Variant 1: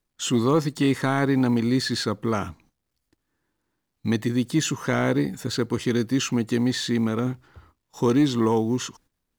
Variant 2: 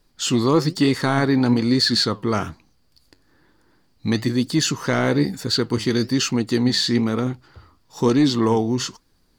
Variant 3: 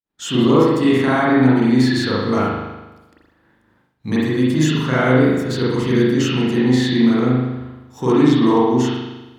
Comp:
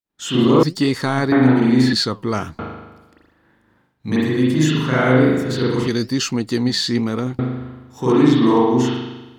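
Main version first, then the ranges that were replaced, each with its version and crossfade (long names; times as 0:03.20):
3
0:00.63–0:01.32: punch in from 2
0:01.93–0:02.59: punch in from 2
0:05.88–0:07.39: punch in from 2
not used: 1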